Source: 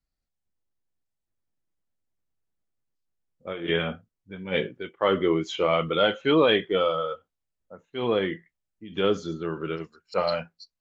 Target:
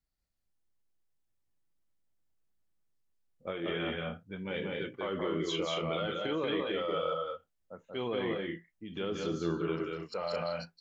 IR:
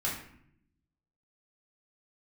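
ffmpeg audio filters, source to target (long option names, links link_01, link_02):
-filter_complex "[0:a]acompressor=threshold=-22dB:ratio=6,alimiter=limit=-23.5dB:level=0:latency=1:release=49,asplit=2[link_01][link_02];[link_02]aecho=0:1:183.7|218.7:0.708|0.501[link_03];[link_01][link_03]amix=inputs=2:normalize=0,volume=-2.5dB"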